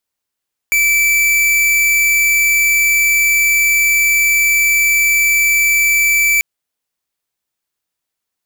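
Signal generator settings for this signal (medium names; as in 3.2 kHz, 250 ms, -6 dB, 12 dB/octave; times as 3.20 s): tone square 2.32 kHz -12.5 dBFS 5.69 s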